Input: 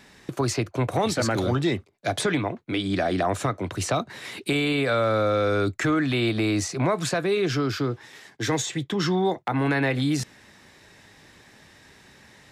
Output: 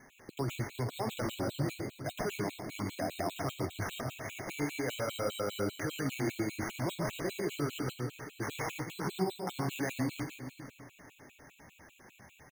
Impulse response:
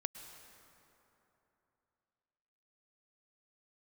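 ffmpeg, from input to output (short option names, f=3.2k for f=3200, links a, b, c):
-filter_complex "[0:a]alimiter=limit=-22dB:level=0:latency=1:release=67,flanger=delay=7.6:depth=7.2:regen=57:speed=1:shape=sinusoidal,acrusher=samples=10:mix=1:aa=0.000001,aecho=1:1:118|462:0.422|0.251,asplit=2[a][b];[1:a]atrim=start_sample=2205,adelay=142[c];[b][c]afir=irnorm=-1:irlink=0,volume=-6dB[d];[a][d]amix=inputs=2:normalize=0,afftfilt=real='re*gt(sin(2*PI*5*pts/sr)*(1-2*mod(floor(b*sr/1024/2200),2)),0)':imag='im*gt(sin(2*PI*5*pts/sr)*(1-2*mod(floor(b*sr/1024/2200),2)),0)':win_size=1024:overlap=0.75"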